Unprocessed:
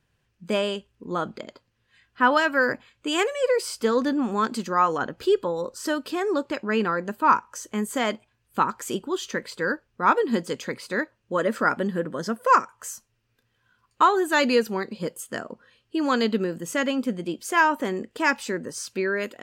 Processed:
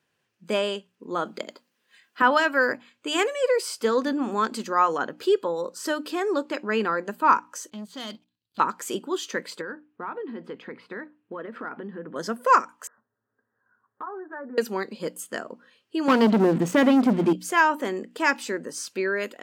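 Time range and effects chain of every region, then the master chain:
1.25–2.22 s: high-pass 160 Hz 24 dB/octave + treble shelf 8 kHz +11 dB + transient shaper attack +5 dB, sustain +1 dB
7.70–8.60 s: FFT filter 110 Hz 0 dB, 390 Hz -19 dB, 2.2 kHz -19 dB, 4.1 kHz 0 dB, 8 kHz -29 dB + waveshaping leveller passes 2
9.61–12.16 s: distance through air 460 m + compression 8:1, threshold -29 dBFS + band-stop 570 Hz, Q 7.1
12.87–14.58 s: steep low-pass 1.8 kHz 96 dB/octave + compression 3:1, threshold -37 dBFS + comb of notches 170 Hz
16.08–17.33 s: RIAA curve playback + waveshaping leveller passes 3 + compression 3:1, threshold -15 dBFS
whole clip: high-pass 220 Hz 12 dB/octave; hum notches 60/120/180/240/300 Hz

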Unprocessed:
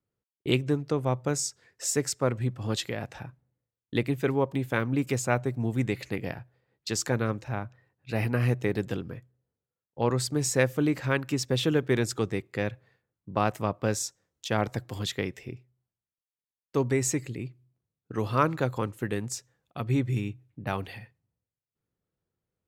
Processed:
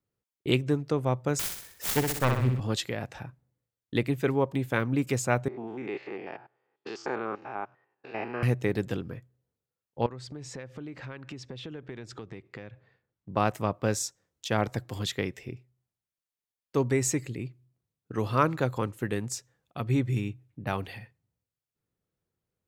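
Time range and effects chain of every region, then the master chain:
1.39–2.60 s: self-modulated delay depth 0.62 ms + bass shelf 83 Hz +9.5 dB + flutter echo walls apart 10.8 m, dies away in 0.67 s
5.48–8.43 s: spectrogram pixelated in time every 100 ms + cabinet simulation 380–4200 Hz, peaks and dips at 380 Hz +7 dB, 540 Hz -4 dB, 820 Hz +7 dB, 1.2 kHz +4 dB, 1.9 kHz -3 dB, 3.9 kHz -10 dB
10.06–13.29 s: low-pass 4.2 kHz + compression, threshold -38 dBFS
whole clip: none

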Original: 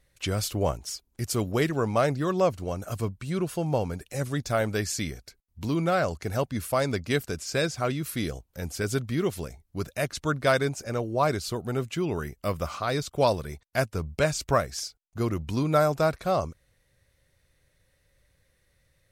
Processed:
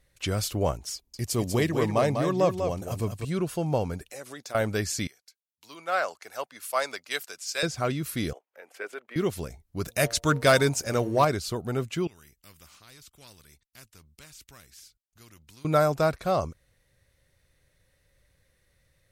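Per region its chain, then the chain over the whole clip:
0.94–3.25 s: peaking EQ 1.4 kHz -10.5 dB 0.22 oct + delay 196 ms -6.5 dB
4.10–4.55 s: high-pass 400 Hz + compression 3:1, threshold -38 dBFS
5.07–7.63 s: high-pass 780 Hz + three bands expanded up and down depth 70%
8.33–9.16 s: resonant high shelf 3.4 kHz -13.5 dB, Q 1.5 + level held to a coarse grid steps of 10 dB + high-pass 430 Hz 24 dB/octave
9.85–11.25 s: treble shelf 3.9 kHz +7 dB + de-hum 115.8 Hz, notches 8 + waveshaping leveller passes 1
12.07–15.65 s: amplifier tone stack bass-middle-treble 6-0-2 + spectrum-flattening compressor 2:1
whole clip: none

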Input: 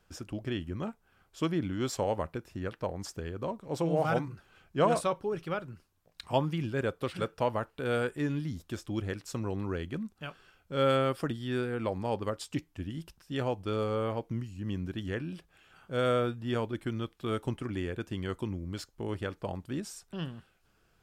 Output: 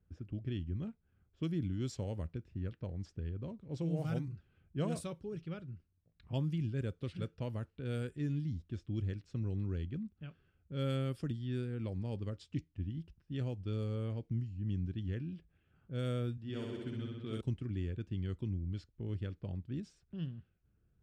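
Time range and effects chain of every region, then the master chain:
16.37–17.41 s: high-pass 250 Hz 6 dB/octave + flutter echo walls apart 10.9 m, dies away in 1.5 s
whole clip: high-pass 62 Hz; level-controlled noise filter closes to 1.4 kHz, open at -25 dBFS; amplifier tone stack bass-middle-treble 10-0-1; trim +12.5 dB

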